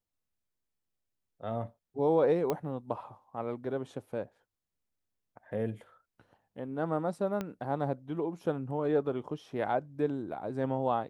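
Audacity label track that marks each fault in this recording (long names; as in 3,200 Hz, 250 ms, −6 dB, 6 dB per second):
2.500000	2.500000	click −17 dBFS
7.410000	7.410000	click −21 dBFS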